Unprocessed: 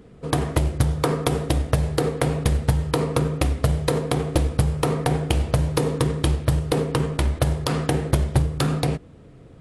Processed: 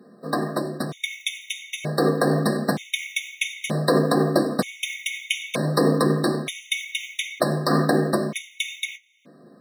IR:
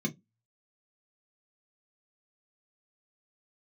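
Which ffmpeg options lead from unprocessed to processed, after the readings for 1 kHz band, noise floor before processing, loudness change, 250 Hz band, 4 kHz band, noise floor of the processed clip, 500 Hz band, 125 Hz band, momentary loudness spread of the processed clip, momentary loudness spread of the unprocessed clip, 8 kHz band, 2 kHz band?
+1.0 dB, -46 dBFS, -1.0 dB, +1.5 dB, +3.5 dB, -51 dBFS, +1.0 dB, -7.5 dB, 10 LU, 2 LU, +0.5 dB, +6.0 dB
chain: -filter_complex "[0:a]highpass=740,dynaudnorm=f=490:g=7:m=4.73,asplit=2[s0][s1];[s1]alimiter=limit=0.251:level=0:latency=1:release=75,volume=0.708[s2];[s0][s2]amix=inputs=2:normalize=0,acrusher=bits=4:mode=log:mix=0:aa=0.000001[s3];[1:a]atrim=start_sample=2205[s4];[s3][s4]afir=irnorm=-1:irlink=0,afftfilt=real='re*gt(sin(2*PI*0.54*pts/sr)*(1-2*mod(floor(b*sr/1024/1900),2)),0)':imag='im*gt(sin(2*PI*0.54*pts/sr)*(1-2*mod(floor(b*sr/1024/1900),2)),0)':win_size=1024:overlap=0.75,volume=0.75"

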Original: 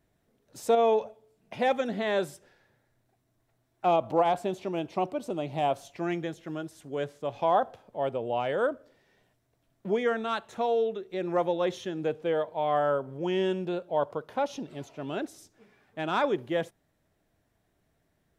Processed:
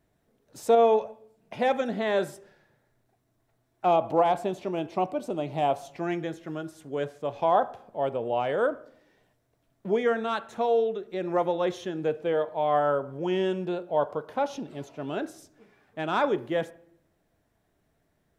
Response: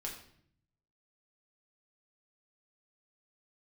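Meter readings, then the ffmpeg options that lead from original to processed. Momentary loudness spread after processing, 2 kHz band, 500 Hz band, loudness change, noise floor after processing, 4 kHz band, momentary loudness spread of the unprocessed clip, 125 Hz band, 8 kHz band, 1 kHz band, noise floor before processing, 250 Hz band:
12 LU, +1.0 dB, +2.0 dB, +2.0 dB, -72 dBFS, -0.5 dB, 12 LU, +1.0 dB, no reading, +2.0 dB, -74 dBFS, +1.0 dB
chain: -filter_complex "[0:a]asplit=2[s0][s1];[s1]lowshelf=f=180:g=-11[s2];[1:a]atrim=start_sample=2205,lowpass=2000[s3];[s2][s3]afir=irnorm=-1:irlink=0,volume=0.422[s4];[s0][s4]amix=inputs=2:normalize=0"

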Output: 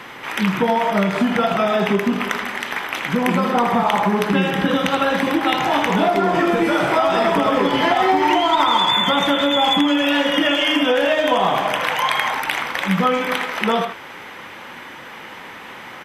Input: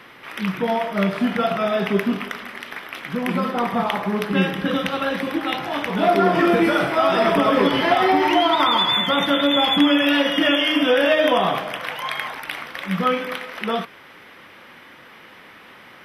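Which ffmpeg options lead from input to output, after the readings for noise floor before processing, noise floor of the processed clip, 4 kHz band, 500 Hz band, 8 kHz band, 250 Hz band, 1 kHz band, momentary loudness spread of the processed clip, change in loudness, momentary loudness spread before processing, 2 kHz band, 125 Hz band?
-45 dBFS, -37 dBFS, +1.0 dB, +1.0 dB, +7.5 dB, +1.5 dB, +3.5 dB, 19 LU, +2.0 dB, 12 LU, +2.5 dB, +2.5 dB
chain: -filter_complex "[0:a]asplit=2[s0][s1];[s1]adelay=80,highpass=300,lowpass=3400,asoftclip=type=hard:threshold=0.188,volume=0.447[s2];[s0][s2]amix=inputs=2:normalize=0,acompressor=threshold=0.0794:ratio=6,superequalizer=9b=1.58:15b=2.24,volume=2.37"

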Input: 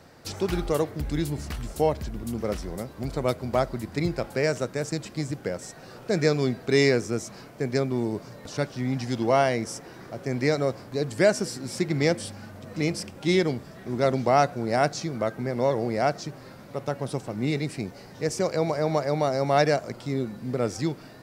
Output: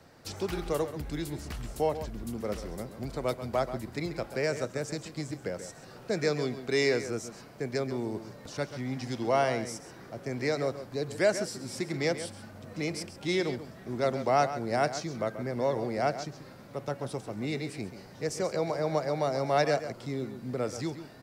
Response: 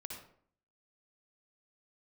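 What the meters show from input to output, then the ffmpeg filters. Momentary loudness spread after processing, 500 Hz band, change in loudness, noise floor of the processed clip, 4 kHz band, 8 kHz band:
12 LU, -4.5 dB, -5.0 dB, -49 dBFS, -4.5 dB, -4.5 dB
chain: -filter_complex "[0:a]acrossover=split=340|480|6700[s0][s1][s2][s3];[s0]alimiter=level_in=1.19:limit=0.0631:level=0:latency=1:release=333,volume=0.841[s4];[s4][s1][s2][s3]amix=inputs=4:normalize=0,asplit=2[s5][s6];[s6]adelay=134.1,volume=0.282,highshelf=f=4000:g=-3.02[s7];[s5][s7]amix=inputs=2:normalize=0,volume=0.596"

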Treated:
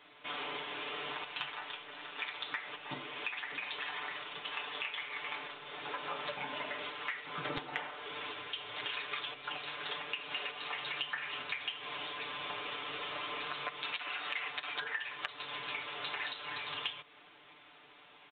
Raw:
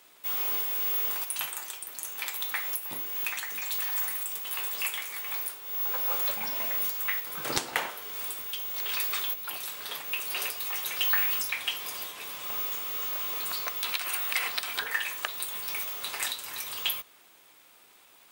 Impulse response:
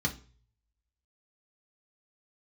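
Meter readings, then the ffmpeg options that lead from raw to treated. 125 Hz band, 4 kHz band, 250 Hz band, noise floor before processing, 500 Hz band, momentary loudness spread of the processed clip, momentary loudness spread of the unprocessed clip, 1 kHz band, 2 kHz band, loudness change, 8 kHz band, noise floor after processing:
-1.0 dB, -4.5 dB, -2.0 dB, -57 dBFS, -1.5 dB, 6 LU, 8 LU, -1.5 dB, -3.5 dB, -10.0 dB, under -40 dB, -59 dBFS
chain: -af "aecho=1:1:6.8:0.94,aresample=8000,aresample=44100,acompressor=threshold=0.0158:ratio=5"

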